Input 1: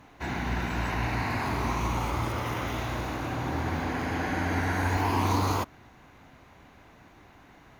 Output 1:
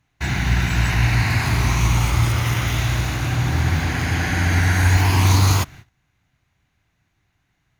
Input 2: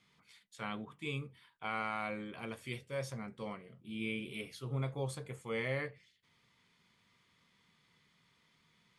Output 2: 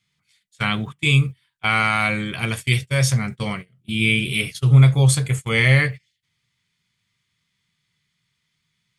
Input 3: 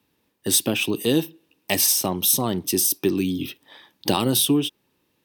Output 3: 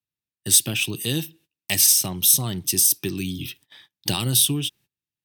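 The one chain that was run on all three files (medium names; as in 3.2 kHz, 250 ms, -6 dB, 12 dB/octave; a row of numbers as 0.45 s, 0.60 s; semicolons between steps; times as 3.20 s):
gate -48 dBFS, range -24 dB; graphic EQ 125/250/500/1000/8000 Hz +5/-8/-10/-8/+4 dB; normalise loudness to -19 LUFS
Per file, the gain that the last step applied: +12.5 dB, +23.5 dB, +1.0 dB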